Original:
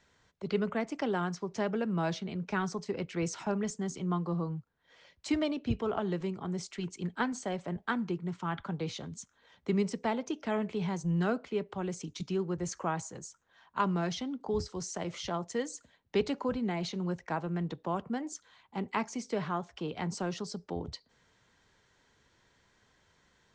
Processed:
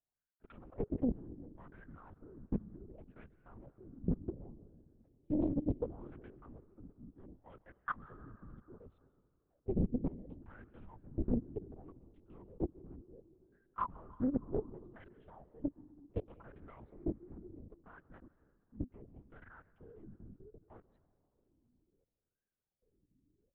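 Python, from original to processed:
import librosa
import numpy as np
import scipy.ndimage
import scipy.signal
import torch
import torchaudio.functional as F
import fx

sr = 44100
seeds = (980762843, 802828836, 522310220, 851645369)

y = fx.wiener(x, sr, points=41)
y = fx.wah_lfo(y, sr, hz=0.68, low_hz=240.0, high_hz=1600.0, q=7.4)
y = fx.peak_eq(y, sr, hz=1000.0, db=-7.0, octaves=2.8)
y = fx.level_steps(y, sr, step_db=23)
y = fx.peak_eq(y, sr, hz=110.0, db=7.5, octaves=2.5)
y = fx.rev_freeverb(y, sr, rt60_s=2.6, hf_ratio=0.4, predelay_ms=90, drr_db=16.5)
y = fx.lpc_vocoder(y, sr, seeds[0], excitation='whisper', order=8)
y = fx.doppler_dist(y, sr, depth_ms=0.81)
y = y * librosa.db_to_amplitude(12.5)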